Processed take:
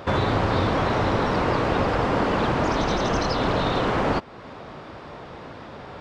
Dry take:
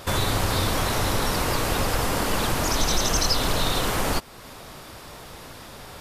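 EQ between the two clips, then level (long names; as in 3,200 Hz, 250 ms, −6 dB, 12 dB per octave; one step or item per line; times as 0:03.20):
high-pass filter 160 Hz 6 dB per octave
head-to-tape spacing loss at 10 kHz 42 dB
high-shelf EQ 4,300 Hz +5.5 dB
+7.5 dB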